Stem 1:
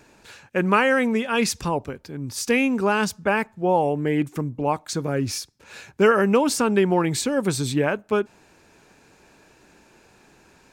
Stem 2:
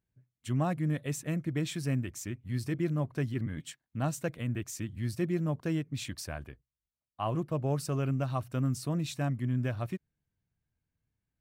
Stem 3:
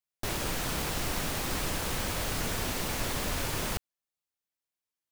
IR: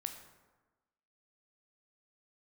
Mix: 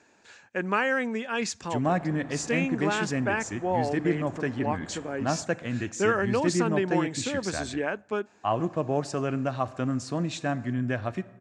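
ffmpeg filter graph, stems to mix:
-filter_complex "[0:a]volume=-8.5dB,asplit=2[a][b];[b]volume=-24dB[c];[1:a]highshelf=f=4.6k:g=-5.5,adelay=1250,volume=2.5dB,asplit=2[d][e];[e]volume=-4.5dB[f];[2:a]lowpass=1.1k,adelay=1650,volume=-10dB[g];[3:a]atrim=start_sample=2205[h];[c][f]amix=inputs=2:normalize=0[i];[i][h]afir=irnorm=-1:irlink=0[j];[a][d][g][j]amix=inputs=4:normalize=0,highpass=110,equalizer=f=140:t=q:w=4:g=-9,equalizer=f=720:t=q:w=4:g=3,equalizer=f=1.7k:t=q:w=4:g=5,equalizer=f=7.1k:t=q:w=4:g=6,lowpass=f=7.5k:w=0.5412,lowpass=f=7.5k:w=1.3066"

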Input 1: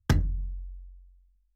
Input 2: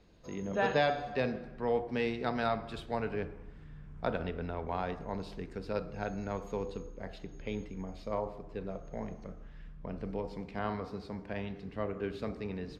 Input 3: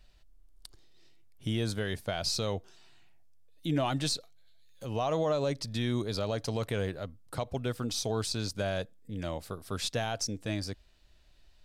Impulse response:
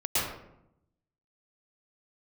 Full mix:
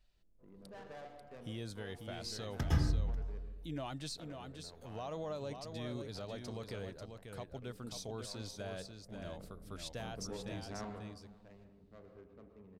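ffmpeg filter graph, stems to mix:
-filter_complex "[0:a]adelay=2500,volume=-15dB,asplit=3[a][b][c];[b]volume=-3.5dB[d];[c]volume=-19.5dB[e];[1:a]asoftclip=type=tanh:threshold=-27dB,adynamicsmooth=sensitivity=5.5:basefreq=510,adelay=150,volume=-8.5dB,afade=t=in:st=9.09:d=0.23:silence=0.281838,afade=t=out:st=10.86:d=0.22:silence=0.251189,asplit=3[f][g][h];[g]volume=-16.5dB[i];[h]volume=-24dB[j];[2:a]volume=-12.5dB,asplit=3[k][l][m];[l]volume=-6.5dB[n];[m]apad=whole_len=178731[o];[a][o]sidechaincompress=threshold=-46dB:ratio=8:attack=16:release=684[p];[3:a]atrim=start_sample=2205[q];[d][i]amix=inputs=2:normalize=0[r];[r][q]afir=irnorm=-1:irlink=0[s];[e][j][n]amix=inputs=3:normalize=0,aecho=0:1:541:1[t];[p][f][k][s][t]amix=inputs=5:normalize=0"

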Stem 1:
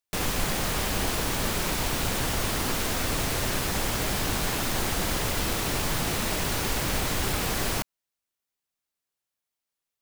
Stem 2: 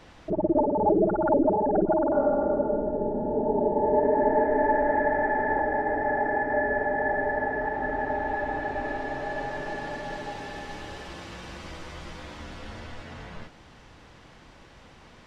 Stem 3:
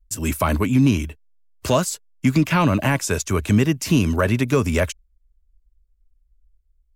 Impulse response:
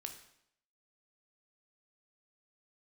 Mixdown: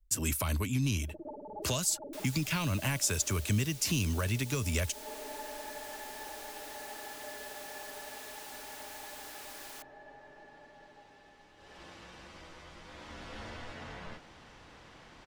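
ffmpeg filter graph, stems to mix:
-filter_complex "[0:a]highpass=940,aeval=exprs='0.0316*(abs(mod(val(0)/0.0316+3,4)-2)-1)':c=same,adelay=2000,volume=-13dB[a];[1:a]adelay=700,volume=-1.5dB,afade=t=in:st=11.56:d=0.28:silence=0.281838,afade=t=in:st=12.82:d=0.59:silence=0.421697[b];[2:a]volume=-2.5dB[c];[a][b][c]amix=inputs=3:normalize=0,lowshelf=f=270:g=-5.5,acrossover=split=130|3000[d][e][f];[e]acompressor=threshold=-36dB:ratio=6[g];[d][g][f]amix=inputs=3:normalize=0"

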